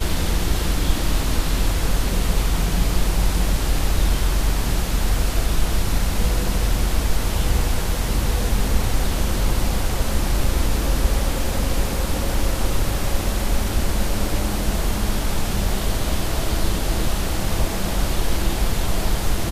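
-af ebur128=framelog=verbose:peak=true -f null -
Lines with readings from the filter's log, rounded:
Integrated loudness:
  I:         -23.2 LUFS
  Threshold: -33.2 LUFS
Loudness range:
  LRA:         1.6 LU
  Threshold: -43.2 LUFS
  LRA low:   -24.0 LUFS
  LRA high:  -22.5 LUFS
True peak:
  Peak:       -4.3 dBFS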